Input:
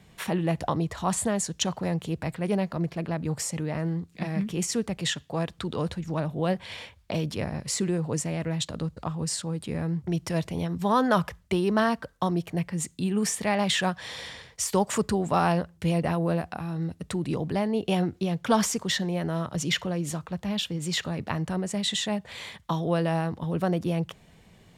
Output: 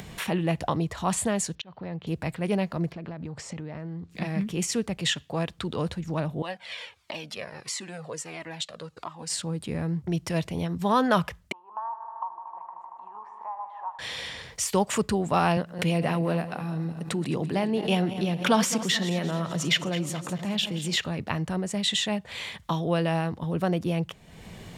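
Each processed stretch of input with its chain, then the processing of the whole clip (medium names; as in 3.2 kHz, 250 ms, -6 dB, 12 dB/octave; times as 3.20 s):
1.55–2.07 s: low-pass 4.1 kHz 24 dB/octave + slow attack 742 ms
2.92–4.11 s: compression 5:1, threshold -34 dBFS + distance through air 110 m
6.42–9.30 s: frequency weighting A + Shepard-style flanger falling 1.5 Hz
11.52–13.99 s: Butterworth band-pass 950 Hz, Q 4.8 + multi-head delay 77 ms, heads first and second, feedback 75%, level -14.5 dB
15.57–20.96 s: backward echo that repeats 107 ms, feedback 67%, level -13 dB + high-pass 120 Hz 24 dB/octave + swell ahead of each attack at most 130 dB/s
whole clip: dynamic bell 2.7 kHz, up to +5 dB, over -45 dBFS, Q 1.7; upward compressor, threshold -31 dBFS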